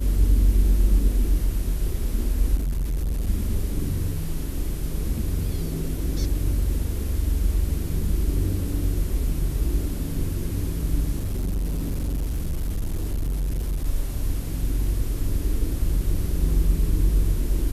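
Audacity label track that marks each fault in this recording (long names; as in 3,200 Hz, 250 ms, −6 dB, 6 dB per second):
2.550000	3.280000	clipping −22 dBFS
11.160000	13.860000	clipping −22 dBFS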